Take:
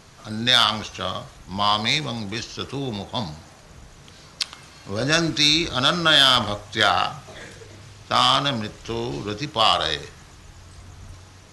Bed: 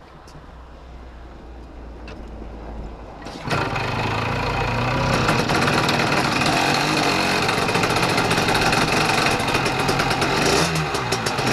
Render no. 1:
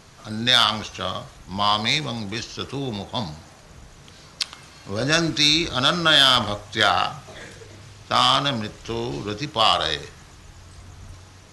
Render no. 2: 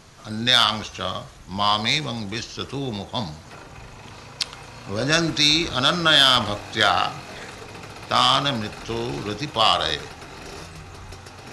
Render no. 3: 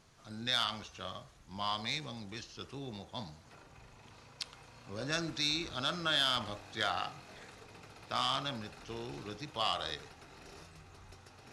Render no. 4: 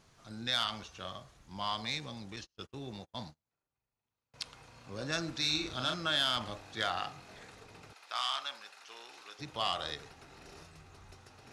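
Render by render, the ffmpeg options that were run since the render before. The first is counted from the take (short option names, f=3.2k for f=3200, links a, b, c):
-af anull
-filter_complex "[1:a]volume=-20.5dB[a];[0:a][a]amix=inputs=2:normalize=0"
-af "volume=-15.5dB"
-filter_complex "[0:a]asettb=1/sr,asplit=3[a][b][c];[a]atrim=end=2.364[d];[b]atrim=start=2.36:end=4.34,asetpts=PTS-STARTPTS,afade=t=in:d=0.004:c=qsin,afade=t=out:st=1.976:d=0.004:c=qsin,agate=range=-35dB:threshold=-49dB:ratio=16:release=100:detection=peak[e];[c]atrim=start=4.336[f];[d][e]acrossfade=d=0.004:c1=hsin:c2=qsin[g];[g][f]acrossfade=d=0.004:c1=qsin:c2=hsin,asettb=1/sr,asplit=3[h][i][j];[h]atrim=end=5.374[k];[i]atrim=start=5.37:end=5.94,asetpts=PTS-STARTPTS,afade=t=in:d=0.004:c=qsin,afade=t=out:st=0.566:d=0.004:c=qsin,asplit=2[l][m];[m]adelay=39,volume=-5dB[n];[l][n]amix=inputs=2:normalize=0,atrim=end_sample=25137[o];[j]atrim=start=5.936[p];[k][o]acrossfade=d=0.004:c1=hsin:c2=qsin[q];[q][p]acrossfade=d=0.004:c1=qsin:c2=hsin,asettb=1/sr,asplit=3[r][s][t];[r]atrim=end=7.934[u];[s]atrim=start=7.93:end=9.39,asetpts=PTS-STARTPTS,afade=t=in:d=0.004:c=qsin,afade=t=out:st=1.456:d=0.004:c=qsin,highpass=950[v];[t]atrim=start=9.386[w];[u][v]acrossfade=d=0.004:c1=hsin:c2=qsin[x];[x][w]acrossfade=d=0.004:c1=qsin:c2=hsin"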